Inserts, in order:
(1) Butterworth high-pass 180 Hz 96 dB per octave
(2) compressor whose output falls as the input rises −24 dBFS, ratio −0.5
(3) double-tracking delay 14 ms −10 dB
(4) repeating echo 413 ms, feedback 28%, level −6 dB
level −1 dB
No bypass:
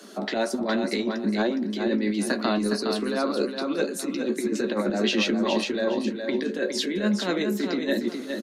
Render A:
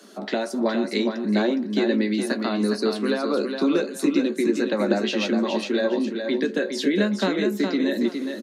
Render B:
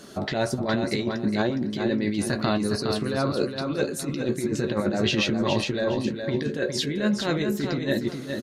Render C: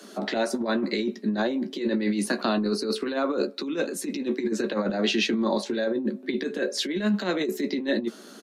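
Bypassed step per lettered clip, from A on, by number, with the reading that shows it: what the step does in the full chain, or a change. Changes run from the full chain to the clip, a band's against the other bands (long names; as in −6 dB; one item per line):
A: 2, change in crest factor +2.0 dB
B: 1, 125 Hz band +8.5 dB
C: 4, change in integrated loudness −1.0 LU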